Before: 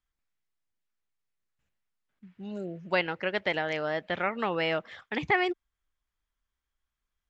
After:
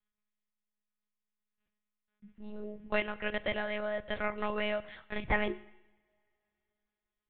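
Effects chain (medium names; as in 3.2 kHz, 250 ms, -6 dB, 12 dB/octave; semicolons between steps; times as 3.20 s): monotone LPC vocoder at 8 kHz 210 Hz; two-slope reverb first 0.85 s, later 3.5 s, from -27 dB, DRR 15 dB; trim -4 dB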